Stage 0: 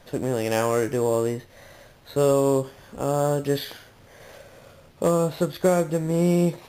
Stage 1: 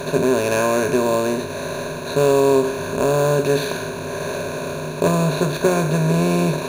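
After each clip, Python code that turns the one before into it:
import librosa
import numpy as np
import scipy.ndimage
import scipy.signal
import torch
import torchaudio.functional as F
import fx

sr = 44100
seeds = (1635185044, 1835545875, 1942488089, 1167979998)

y = fx.bin_compress(x, sr, power=0.4)
y = fx.ripple_eq(y, sr, per_octave=1.5, db=15)
y = F.gain(torch.from_numpy(y), -1.0).numpy()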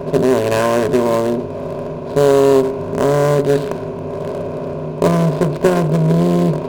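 y = fx.wiener(x, sr, points=25)
y = fx.running_max(y, sr, window=5)
y = F.gain(torch.from_numpy(y), 4.5).numpy()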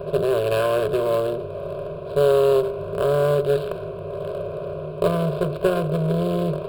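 y = fx.fixed_phaser(x, sr, hz=1300.0, stages=8)
y = F.gain(torch.from_numpy(y), -3.5).numpy()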